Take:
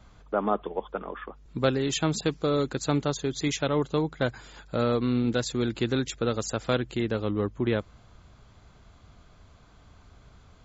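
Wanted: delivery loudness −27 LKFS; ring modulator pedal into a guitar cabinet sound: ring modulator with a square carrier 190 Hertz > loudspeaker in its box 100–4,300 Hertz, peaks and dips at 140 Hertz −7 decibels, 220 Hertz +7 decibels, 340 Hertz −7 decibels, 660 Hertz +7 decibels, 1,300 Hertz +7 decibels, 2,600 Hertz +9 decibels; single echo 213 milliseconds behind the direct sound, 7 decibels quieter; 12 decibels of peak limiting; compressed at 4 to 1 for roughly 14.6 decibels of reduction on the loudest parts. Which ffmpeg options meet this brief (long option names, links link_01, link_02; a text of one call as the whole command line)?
ffmpeg -i in.wav -af "acompressor=threshold=-38dB:ratio=4,alimiter=level_in=10.5dB:limit=-24dB:level=0:latency=1,volume=-10.5dB,aecho=1:1:213:0.447,aeval=exprs='val(0)*sgn(sin(2*PI*190*n/s))':channel_layout=same,highpass=100,equalizer=frequency=140:width_type=q:width=4:gain=-7,equalizer=frequency=220:width_type=q:width=4:gain=7,equalizer=frequency=340:width_type=q:width=4:gain=-7,equalizer=frequency=660:width_type=q:width=4:gain=7,equalizer=frequency=1300:width_type=q:width=4:gain=7,equalizer=frequency=2600:width_type=q:width=4:gain=9,lowpass=frequency=4300:width=0.5412,lowpass=frequency=4300:width=1.3066,volume=17dB" out.wav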